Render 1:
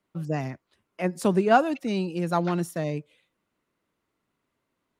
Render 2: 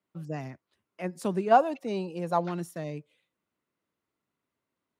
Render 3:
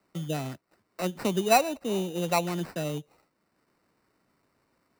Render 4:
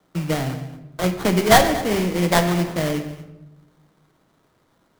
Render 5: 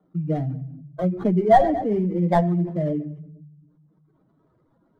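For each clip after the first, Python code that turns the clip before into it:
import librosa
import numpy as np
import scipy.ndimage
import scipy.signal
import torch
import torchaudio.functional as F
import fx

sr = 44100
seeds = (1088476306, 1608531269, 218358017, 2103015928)

y1 = fx.spec_box(x, sr, start_s=1.51, length_s=0.95, low_hz=380.0, high_hz=1200.0, gain_db=7)
y1 = scipy.signal.sosfilt(scipy.signal.butter(2, 60.0, 'highpass', fs=sr, output='sos'), y1)
y1 = y1 * 10.0 ** (-7.0 / 20.0)
y2 = fx.sample_hold(y1, sr, seeds[0], rate_hz=3300.0, jitter_pct=0)
y2 = fx.band_squash(y2, sr, depth_pct=40)
y2 = y2 * 10.0 ** (2.0 / 20.0)
y3 = fx.sample_hold(y2, sr, seeds[1], rate_hz=2600.0, jitter_pct=20)
y3 = y3 + 10.0 ** (-17.5 / 20.0) * np.pad(y3, (int(231 * sr / 1000.0), 0))[:len(y3)]
y3 = fx.room_shoebox(y3, sr, seeds[2], volume_m3=380.0, walls='mixed', distance_m=0.57)
y3 = y3 * 10.0 ** (7.5 / 20.0)
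y4 = fx.spec_expand(y3, sr, power=2.1)
y4 = y4 * 10.0 ** (-1.0 / 20.0)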